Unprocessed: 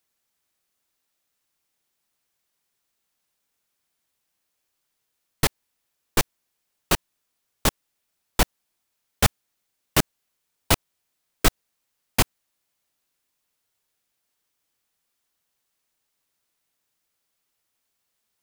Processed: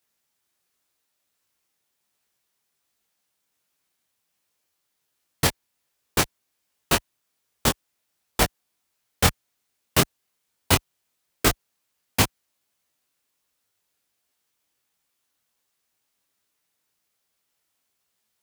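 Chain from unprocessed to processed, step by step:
high-pass filter 42 Hz
micro pitch shift up and down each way 46 cents
level +5 dB

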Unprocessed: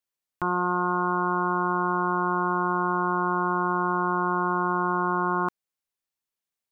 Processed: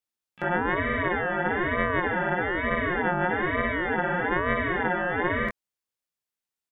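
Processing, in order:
chorus effect 0.79 Hz, delay 15 ms, depth 7.7 ms
pitch-shifted copies added −4 semitones −15 dB, +12 semitones −17 dB
ring modulator whose carrier an LFO sweeps 680 Hz, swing 25%, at 1.1 Hz
level +4.5 dB

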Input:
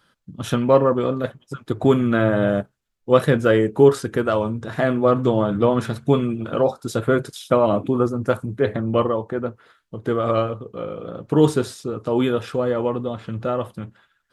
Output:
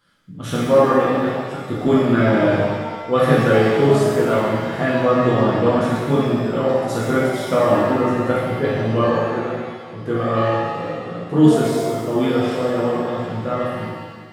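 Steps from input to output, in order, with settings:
reverb with rising layers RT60 1.4 s, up +7 semitones, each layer −8 dB, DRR −7 dB
level −5.5 dB

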